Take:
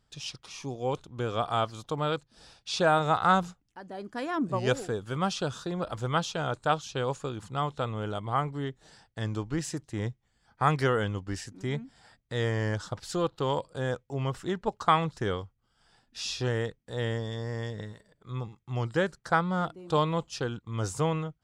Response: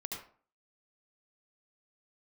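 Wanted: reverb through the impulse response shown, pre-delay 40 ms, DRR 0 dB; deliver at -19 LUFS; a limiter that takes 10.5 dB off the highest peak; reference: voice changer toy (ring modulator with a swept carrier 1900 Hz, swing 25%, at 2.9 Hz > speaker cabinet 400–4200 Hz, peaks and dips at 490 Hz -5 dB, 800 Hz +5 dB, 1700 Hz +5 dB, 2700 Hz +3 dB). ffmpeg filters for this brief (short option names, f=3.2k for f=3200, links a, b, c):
-filter_complex "[0:a]alimiter=limit=-20dB:level=0:latency=1,asplit=2[a][b];[1:a]atrim=start_sample=2205,adelay=40[c];[b][c]afir=irnorm=-1:irlink=0,volume=0dB[d];[a][d]amix=inputs=2:normalize=0,aeval=exprs='val(0)*sin(2*PI*1900*n/s+1900*0.25/2.9*sin(2*PI*2.9*n/s))':c=same,highpass=400,equalizer=f=490:t=q:w=4:g=-5,equalizer=f=800:t=q:w=4:g=5,equalizer=f=1.7k:t=q:w=4:g=5,equalizer=f=2.7k:t=q:w=4:g=3,lowpass=f=4.2k:w=0.5412,lowpass=f=4.2k:w=1.3066,volume=9dB"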